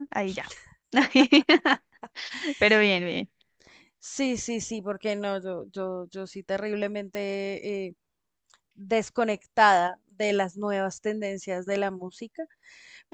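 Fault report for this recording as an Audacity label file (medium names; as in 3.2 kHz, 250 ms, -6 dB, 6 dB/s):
7.150000	7.150000	pop -19 dBFS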